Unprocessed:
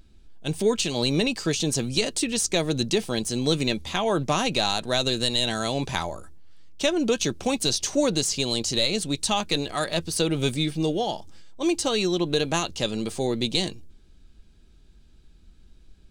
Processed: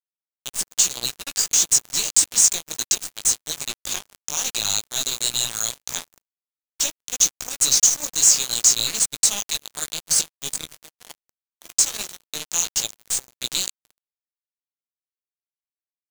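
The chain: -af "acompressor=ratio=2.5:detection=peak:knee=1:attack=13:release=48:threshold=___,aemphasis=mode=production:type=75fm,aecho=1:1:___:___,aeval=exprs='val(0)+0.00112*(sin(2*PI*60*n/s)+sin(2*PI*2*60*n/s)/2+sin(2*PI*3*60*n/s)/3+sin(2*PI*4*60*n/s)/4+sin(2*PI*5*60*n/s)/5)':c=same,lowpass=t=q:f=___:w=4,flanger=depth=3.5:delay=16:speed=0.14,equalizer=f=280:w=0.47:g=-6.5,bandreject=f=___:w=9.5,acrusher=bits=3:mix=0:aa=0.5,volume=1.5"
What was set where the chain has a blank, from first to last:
0.0178, 302, 0.141, 7000, 2000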